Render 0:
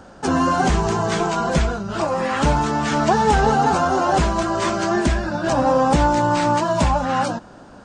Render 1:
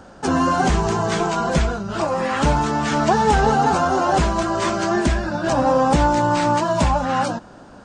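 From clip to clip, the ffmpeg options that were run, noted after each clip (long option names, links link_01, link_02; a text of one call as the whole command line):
ffmpeg -i in.wav -af anull out.wav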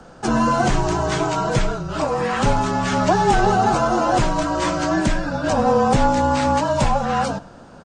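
ffmpeg -i in.wav -filter_complex "[0:a]asplit=2[link_01][link_02];[link_02]adelay=99.13,volume=-19dB,highshelf=frequency=4000:gain=-2.23[link_03];[link_01][link_03]amix=inputs=2:normalize=0,afreqshift=-35" out.wav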